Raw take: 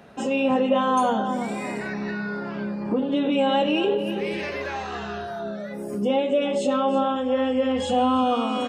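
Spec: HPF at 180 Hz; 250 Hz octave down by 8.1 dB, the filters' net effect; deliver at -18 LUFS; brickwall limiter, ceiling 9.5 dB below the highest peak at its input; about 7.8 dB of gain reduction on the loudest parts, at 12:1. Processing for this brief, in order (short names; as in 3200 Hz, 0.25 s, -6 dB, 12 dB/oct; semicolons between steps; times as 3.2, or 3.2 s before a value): HPF 180 Hz; bell 250 Hz -8 dB; compressor 12:1, threshold -26 dBFS; gain +17 dB; limiter -10.5 dBFS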